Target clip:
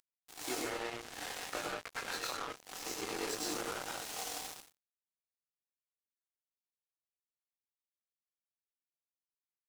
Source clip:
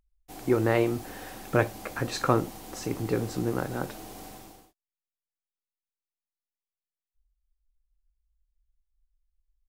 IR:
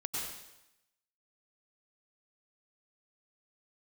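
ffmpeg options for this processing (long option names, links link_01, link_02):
-filter_complex "[0:a]aeval=exprs='if(lt(val(0),0),0.708*val(0),val(0))':channel_layout=same,lowpass=7800,acompressor=mode=upward:threshold=-45dB:ratio=2.5,highpass=520,highshelf=frequency=2500:gain=10.5,acompressor=threshold=-38dB:ratio=20,asettb=1/sr,asplit=3[link_01][link_02][link_03];[link_01]atrim=end=0.614[link_04];[link_02]atrim=start=0.61:end=3.16,asetpts=PTS-STARTPTS,afade=type=in:duration=0.004:curve=qsin,afade=type=out:start_time=2.546:duration=0.004:curve=qsin,highshelf=frequency=6000:gain=-9[link_05];[link_03]atrim=start=3.156[link_06];[link_04][link_05]acrossfade=duration=0.004:curve1=hsin:curve2=qsin[link_07];[link_07][link_06]acrossfade=duration=0.004:curve1=qsin:curve2=hsin[link_08];[1:a]atrim=start_sample=2205,afade=type=out:start_time=0.26:duration=0.01,atrim=end_sample=11907[link_09];[link_08][link_09]afir=irnorm=-1:irlink=0,flanger=delay=20:depth=5.4:speed=0.58,asoftclip=type=tanh:threshold=-40dB,acrusher=bits=6:mix=0:aa=0.5,volume=9.5dB"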